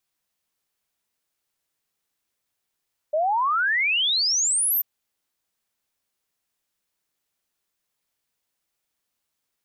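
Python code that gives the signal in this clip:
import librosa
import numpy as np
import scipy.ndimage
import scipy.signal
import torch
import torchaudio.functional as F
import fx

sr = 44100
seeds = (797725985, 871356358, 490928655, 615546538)

y = fx.ess(sr, length_s=1.69, from_hz=590.0, to_hz=14000.0, level_db=-19.0)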